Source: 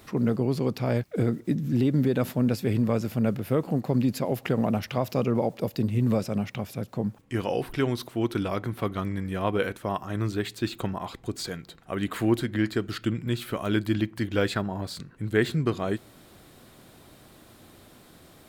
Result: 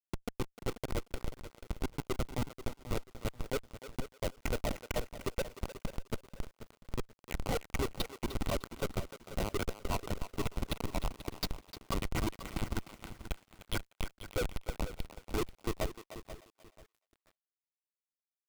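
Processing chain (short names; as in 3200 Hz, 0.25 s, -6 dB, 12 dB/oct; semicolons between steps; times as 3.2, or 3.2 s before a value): per-bin expansion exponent 1.5; 13.21–14.03 passive tone stack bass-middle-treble 5-5-5; in parallel at +3 dB: limiter -20.5 dBFS, peak gain reduction 10 dB; on the sum: compressor 6:1, threshold -29 dBFS, peak gain reduction 14 dB; LFO band-pass saw down 7 Hz 350–3900 Hz; Schmitt trigger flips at -37.5 dBFS; Butterworth band-stop 1700 Hz, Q 6.6; thinning echo 0.303 s, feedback 25%, high-pass 440 Hz, level -11.5 dB; lo-fi delay 0.486 s, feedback 35%, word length 11-bit, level -12 dB; gain +15 dB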